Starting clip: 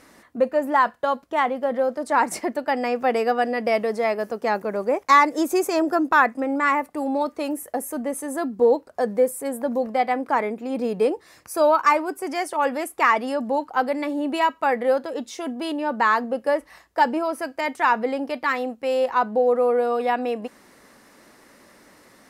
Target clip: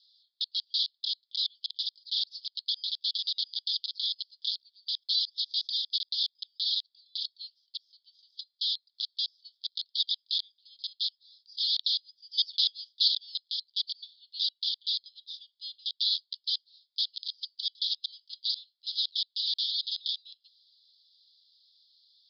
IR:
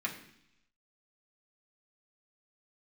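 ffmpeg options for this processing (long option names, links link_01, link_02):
-filter_complex "[0:a]aeval=exprs='(mod(6.68*val(0)+1,2)-1)/6.68':channel_layout=same,asuperpass=centerf=4100:order=12:qfactor=2.4,asettb=1/sr,asplit=3[link_01][link_02][link_03];[link_01]atrim=end=12.384[link_04];[link_02]atrim=start=12.38:end=13.08,asetpts=PTS-STARTPTS,afade=type=in:duration=0.004:curve=qsin,afade=type=out:start_time=0.696:duration=0.004:curve=qsin,acontrast=39[link_05];[link_03]atrim=start=13.076[link_06];[link_04][link_05]acrossfade=duration=0.004:curve1=hsin:curve2=qsin[link_07];[link_07][link_06]acrossfade=duration=0.004:curve1=qsin:curve2=hsin,volume=2dB"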